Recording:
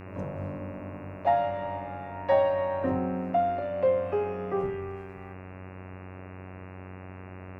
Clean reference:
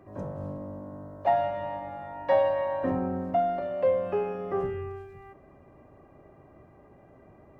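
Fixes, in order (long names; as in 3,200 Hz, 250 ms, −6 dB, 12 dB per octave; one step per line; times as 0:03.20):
hum removal 93 Hz, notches 30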